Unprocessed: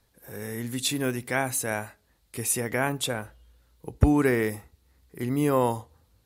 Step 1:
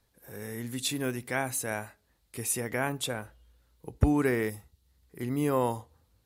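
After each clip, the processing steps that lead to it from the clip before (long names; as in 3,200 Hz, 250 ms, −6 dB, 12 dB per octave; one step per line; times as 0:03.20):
gain on a spectral selection 0:04.50–0:05.02, 200–2,700 Hz −6 dB
level −4 dB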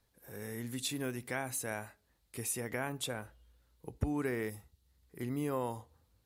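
downward compressor 2 to 1, threshold −31 dBFS, peak gain reduction 8.5 dB
level −3.5 dB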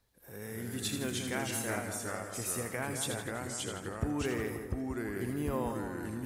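delay with pitch and tempo change per echo 202 ms, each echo −2 semitones, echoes 2
echo with a time of its own for lows and highs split 1,700 Hz, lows 182 ms, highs 81 ms, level −7 dB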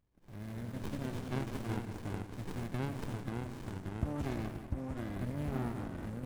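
windowed peak hold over 65 samples
level −1.5 dB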